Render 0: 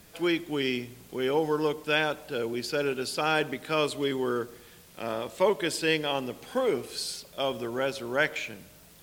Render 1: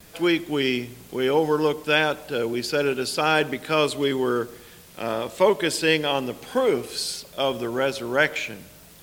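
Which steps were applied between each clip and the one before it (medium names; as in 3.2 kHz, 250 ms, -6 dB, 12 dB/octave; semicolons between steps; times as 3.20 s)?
gate with hold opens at -47 dBFS; trim +5.5 dB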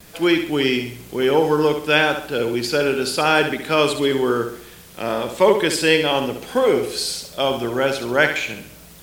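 flutter echo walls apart 11.5 m, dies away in 0.51 s; trim +3.5 dB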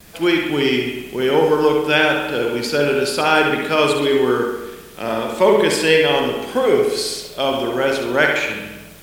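reverberation RT60 1.1 s, pre-delay 48 ms, DRR 2.5 dB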